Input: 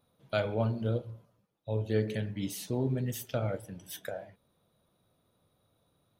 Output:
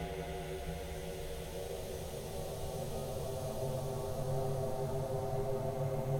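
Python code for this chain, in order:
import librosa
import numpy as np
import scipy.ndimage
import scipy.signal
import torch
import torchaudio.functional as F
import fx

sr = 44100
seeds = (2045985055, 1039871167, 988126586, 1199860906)

y = fx.power_curve(x, sr, exponent=1.4)
y = y * np.sin(2.0 * np.pi * 270.0 * np.arange(len(y)) / sr)
y = fx.paulstretch(y, sr, seeds[0], factor=9.9, window_s=1.0, from_s=2.29)
y = F.gain(torch.from_numpy(y), 2.5).numpy()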